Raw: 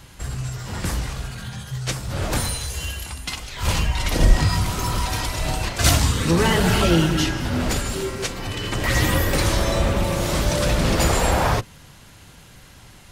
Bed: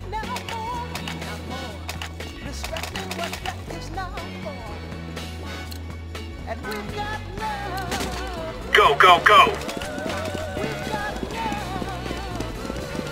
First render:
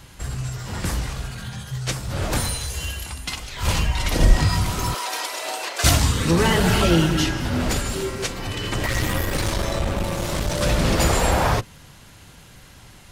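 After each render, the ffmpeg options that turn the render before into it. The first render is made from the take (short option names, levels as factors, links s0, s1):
-filter_complex "[0:a]asettb=1/sr,asplit=3[s0][s1][s2];[s0]atrim=end=4.944[s3];[s1]atrim=start=4.94:end=5.84,asetpts=PTS-STARTPTS,afade=t=in:d=0.004:c=qsin,afade=t=out:st=0.896:d=0.004:c=qsin,highpass=f=400:w=0.5412,highpass=f=400:w=1.3066[s4];[s2]atrim=start=5.836[s5];[s3][s4]acrossfade=d=0.004:c1=hsin:c2=qsin[s6];[s6][s5]acrossfade=d=0.004:c1=qsin:c2=hsin,asettb=1/sr,asplit=3[s7][s8][s9];[s7]atrim=end=8.864[s10];[s8]atrim=start=8.86:end=10.61,asetpts=PTS-STARTPTS,afade=t=in:d=0.004:c=qsin,afade=t=out:st=1.746:d=0.004:c=qsin,aeval=exprs='(tanh(7.08*val(0)+0.55)-tanh(0.55))/7.08':c=same[s11];[s9]atrim=start=10.606[s12];[s10][s11]acrossfade=d=0.004:c1=hsin:c2=qsin[s13];[s13][s12]acrossfade=d=0.004:c1=qsin:c2=hsin"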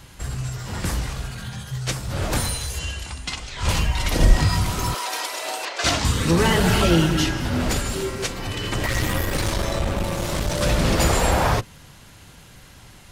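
-filter_complex "[0:a]asettb=1/sr,asplit=3[s0][s1][s2];[s0]atrim=end=2.794[s3];[s1]atrim=start=2.79:end=3.69,asetpts=PTS-STARTPTS,afade=t=in:d=0.004:c=qsin,afade=t=out:st=0.896:d=0.004:c=qsin,lowpass=f=8800:w=0.5412,lowpass=f=8800:w=1.3066[s4];[s2]atrim=start=3.686[s5];[s3][s4]acrossfade=d=0.004:c1=hsin:c2=qsin[s6];[s6][s5]acrossfade=d=0.004:c1=qsin:c2=hsin,asettb=1/sr,asplit=3[s7][s8][s9];[s7]atrim=end=5.654[s10];[s8]atrim=start=5.65:end=6.05,asetpts=PTS-STARTPTS,afade=t=in:d=0.004:c=qsin,afade=t=out:st=0.396:d=0.004:c=qsin,acrossover=split=220 7000:gain=0.251 1 0.112[s11][s12][s13];[s11][s12][s13]amix=inputs=3:normalize=0[s14];[s9]atrim=start=6.046[s15];[s10][s14]acrossfade=d=0.004:c1=hsin:c2=qsin[s16];[s16][s15]acrossfade=d=0.004:c1=qsin:c2=hsin"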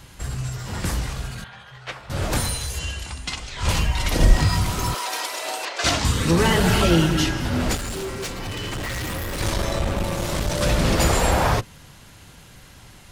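-filter_complex "[0:a]asettb=1/sr,asplit=3[s0][s1][s2];[s0]atrim=end=1.444[s3];[s1]atrim=start=1.44:end=2.1,asetpts=PTS-STARTPTS,afade=t=in:d=0.004:c=qsin,afade=t=out:st=0.656:d=0.004:c=qsin,acrossover=split=510 3300:gain=0.141 1 0.0708[s4][s5][s6];[s4][s5][s6]amix=inputs=3:normalize=0[s7];[s2]atrim=start=2.096[s8];[s3][s7]acrossfade=d=0.004:c1=hsin:c2=qsin[s9];[s9][s8]acrossfade=d=0.004:c1=qsin:c2=hsin,asettb=1/sr,asplit=3[s10][s11][s12];[s10]atrim=end=4.184[s13];[s11]atrim=start=4.18:end=5.38,asetpts=PTS-STARTPTS,afade=t=in:d=0.004:c=qsin,afade=t=out:st=1.196:d=0.004:c=qsin,acrusher=bits=9:dc=4:mix=0:aa=0.000001[s14];[s12]atrim=start=5.376[s15];[s13][s14]acrossfade=d=0.004:c1=hsin:c2=qsin[s16];[s16][s15]acrossfade=d=0.004:c1=qsin:c2=hsin,asettb=1/sr,asplit=3[s17][s18][s19];[s17]atrim=end=7.754[s20];[s18]atrim=start=7.75:end=9.41,asetpts=PTS-STARTPTS,afade=t=in:d=0.004:c=qsin,afade=t=out:st=1.656:d=0.004:c=qsin,asoftclip=type=hard:threshold=0.0501[s21];[s19]atrim=start=9.406[s22];[s20][s21]acrossfade=d=0.004:c1=hsin:c2=qsin[s23];[s23][s22]acrossfade=d=0.004:c1=qsin:c2=hsin"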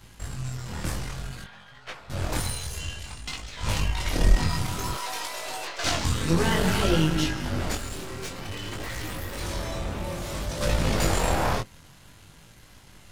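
-af "aeval=exprs='if(lt(val(0),0),0.447*val(0),val(0))':c=same,flanger=delay=19:depth=5.6:speed=0.56"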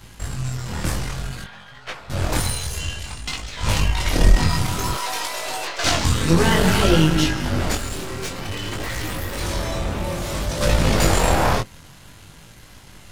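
-af "volume=2.11,alimiter=limit=0.794:level=0:latency=1"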